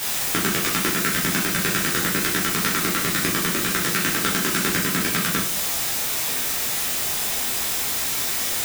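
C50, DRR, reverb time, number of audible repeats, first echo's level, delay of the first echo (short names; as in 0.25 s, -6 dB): 5.5 dB, -6.5 dB, 0.45 s, none, none, none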